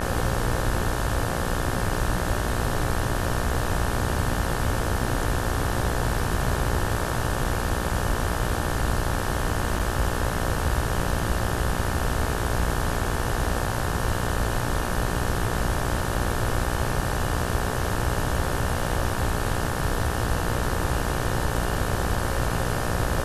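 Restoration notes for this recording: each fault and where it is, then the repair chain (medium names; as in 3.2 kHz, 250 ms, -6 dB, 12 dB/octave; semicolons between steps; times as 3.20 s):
buzz 60 Hz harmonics 30 -30 dBFS
9.79–9.80 s: dropout 6.3 ms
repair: de-hum 60 Hz, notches 30; interpolate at 9.79 s, 6.3 ms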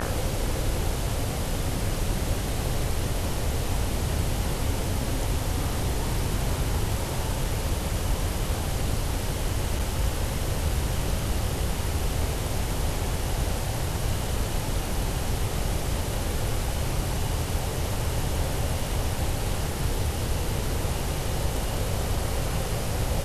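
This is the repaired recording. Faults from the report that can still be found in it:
nothing left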